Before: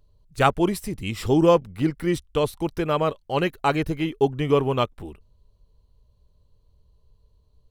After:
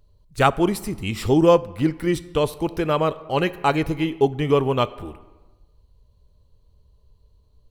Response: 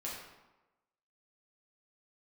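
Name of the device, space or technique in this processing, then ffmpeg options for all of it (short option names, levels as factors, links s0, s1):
ducked reverb: -filter_complex "[0:a]asplit=3[s0][s1][s2];[1:a]atrim=start_sample=2205[s3];[s1][s3]afir=irnorm=-1:irlink=0[s4];[s2]apad=whole_len=339945[s5];[s4][s5]sidechaincompress=threshold=0.0794:ratio=6:attack=16:release=987,volume=0.376[s6];[s0][s6]amix=inputs=2:normalize=0,volume=1.12"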